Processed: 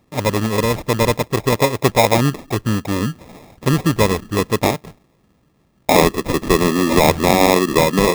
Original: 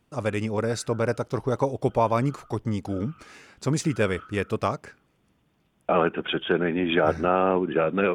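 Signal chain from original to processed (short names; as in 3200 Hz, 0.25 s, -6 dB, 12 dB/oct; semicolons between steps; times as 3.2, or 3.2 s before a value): downsampling 11025 Hz; sample-rate reducer 1500 Hz, jitter 0%; gain +8.5 dB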